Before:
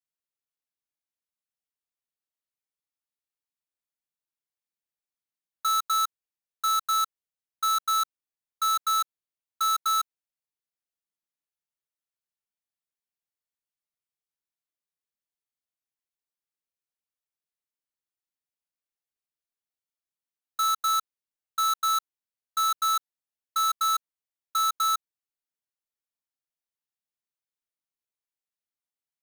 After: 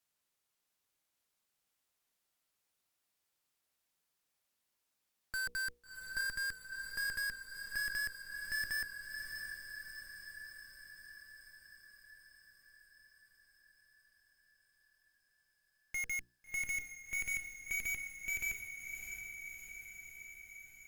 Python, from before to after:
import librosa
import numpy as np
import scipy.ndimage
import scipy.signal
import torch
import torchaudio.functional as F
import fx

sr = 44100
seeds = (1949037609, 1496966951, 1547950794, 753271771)

y = fx.speed_glide(x, sr, from_pct=94, to_pct=186)
y = fx.quant_float(y, sr, bits=4)
y = fx.hum_notches(y, sr, base_hz=60, count=8)
y = fx.tube_stage(y, sr, drive_db=49.0, bias=0.6)
y = fx.echo_diffused(y, sr, ms=675, feedback_pct=65, wet_db=-6.5)
y = y * librosa.db_to_amplitude(12.5)